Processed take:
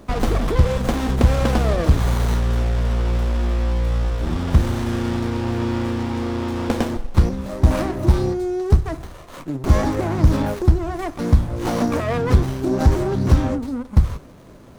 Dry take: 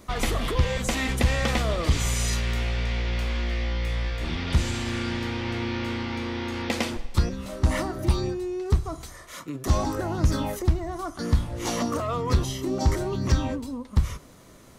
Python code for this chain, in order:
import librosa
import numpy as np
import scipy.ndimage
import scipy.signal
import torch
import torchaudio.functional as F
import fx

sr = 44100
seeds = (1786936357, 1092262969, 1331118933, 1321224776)

y = fx.peak_eq(x, sr, hz=2600.0, db=-8.5, octaves=0.95)
y = fx.running_max(y, sr, window=17)
y = y * 10.0 ** (7.5 / 20.0)